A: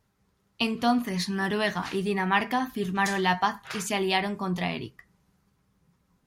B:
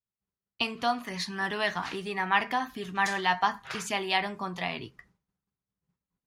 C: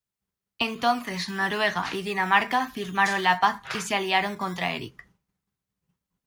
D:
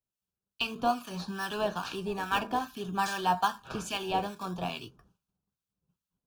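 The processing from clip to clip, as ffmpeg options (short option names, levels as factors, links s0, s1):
-filter_complex "[0:a]agate=range=0.0224:threshold=0.002:ratio=3:detection=peak,highshelf=f=9700:g=-12,acrossover=split=560[s0][s1];[s0]acompressor=threshold=0.0126:ratio=6[s2];[s2][s1]amix=inputs=2:normalize=0"
-filter_complex "[0:a]acrossover=split=380|880|3100[s0][s1][s2][s3];[s0]acrusher=samples=19:mix=1:aa=0.000001:lfo=1:lforange=11.4:lforate=0.95[s4];[s3]alimiter=level_in=2.11:limit=0.0631:level=0:latency=1,volume=0.473[s5];[s4][s1][s2][s5]amix=inputs=4:normalize=0,volume=1.78"
-filter_complex "[0:a]asplit=2[s0][s1];[s1]acrusher=samples=24:mix=1:aa=0.000001:lfo=1:lforange=24:lforate=0.55,volume=0.282[s2];[s0][s2]amix=inputs=2:normalize=0,acrossover=split=1200[s3][s4];[s3]aeval=exprs='val(0)*(1-0.7/2+0.7/2*cos(2*PI*2.4*n/s))':c=same[s5];[s4]aeval=exprs='val(0)*(1-0.7/2-0.7/2*cos(2*PI*2.4*n/s))':c=same[s6];[s5][s6]amix=inputs=2:normalize=0,asuperstop=centerf=2000:order=4:qfactor=2.6,volume=0.668"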